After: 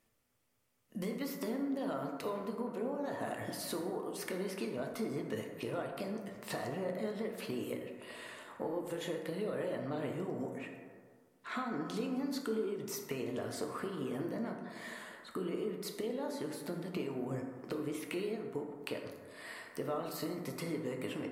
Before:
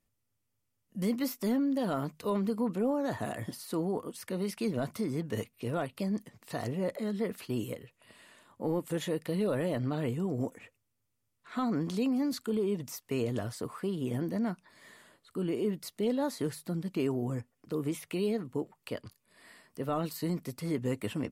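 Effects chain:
bass and treble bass −10 dB, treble −4 dB
downward compressor 6 to 1, threshold −46 dBFS, peak gain reduction 17 dB
dense smooth reverb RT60 1.8 s, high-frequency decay 0.35×, DRR 2 dB
level +8 dB

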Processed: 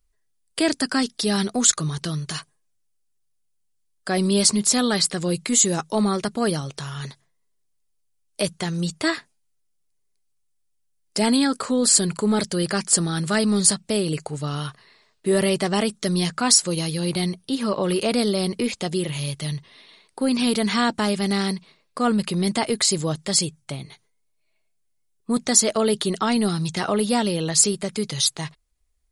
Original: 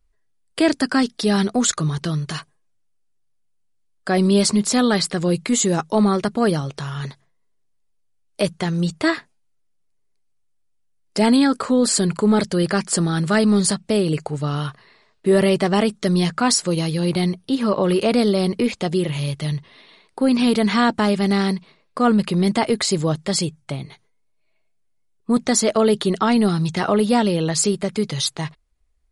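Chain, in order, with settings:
high-shelf EQ 4,100 Hz +11 dB
level −4.5 dB

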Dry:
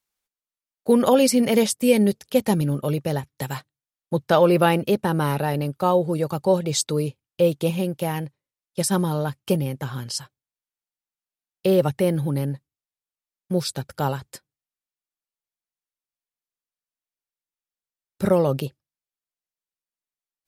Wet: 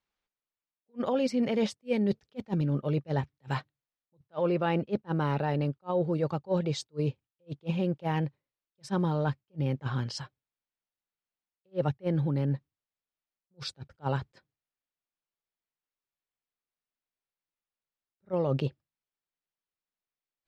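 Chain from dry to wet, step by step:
reversed playback
downward compressor 6 to 1, threshold −26 dBFS, peak gain reduction 14 dB
reversed playback
high-frequency loss of the air 180 metres
level that may rise only so fast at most 500 dB per second
level +1.5 dB

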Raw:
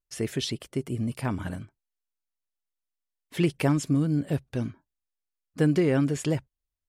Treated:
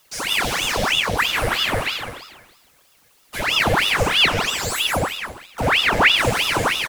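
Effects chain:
peak hold with a decay on every bin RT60 1.83 s
low-shelf EQ 430 Hz −10.5 dB
leveller curve on the samples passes 2
in parallel at −9.5 dB: fuzz pedal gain 39 dB, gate −43 dBFS
on the sum: sound drawn into the spectrogram rise, 0:03.63–0:04.80, 270–11,000 Hz −18 dBFS
gain into a clipping stage and back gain 20 dB
tuned comb filter 96 Hz, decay 0.22 s, harmonics all, mix 90%
on a send: echo with shifted repeats 166 ms, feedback 38%, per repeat +100 Hz, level −3 dB
on the sum: background noise white −58 dBFS
double-tracking delay 49 ms −11 dB
hollow resonant body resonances 300/1,900 Hz, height 16 dB
ring modulator whose carrier an LFO sweeps 1,700 Hz, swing 90%, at 3.1 Hz
level +2.5 dB

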